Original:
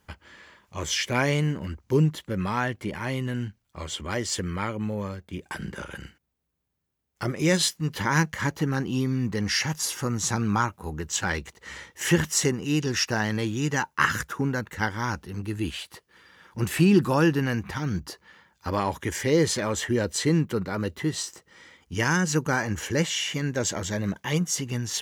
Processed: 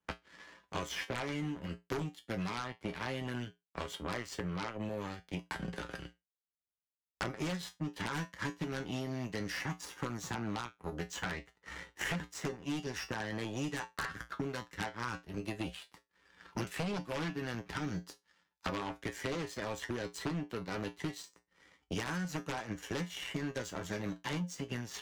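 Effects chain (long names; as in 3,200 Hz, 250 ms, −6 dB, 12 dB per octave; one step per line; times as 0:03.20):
low-pass filter 3,700 Hz 6 dB per octave
power curve on the samples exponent 2
downward compressor 2.5 to 1, threshold −44 dBFS, peak gain reduction 17 dB
tuned comb filter 59 Hz, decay 0.17 s, harmonics odd, mix 80%
sine wavefolder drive 17 dB, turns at −26 dBFS
multiband upward and downward compressor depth 100%
level −3.5 dB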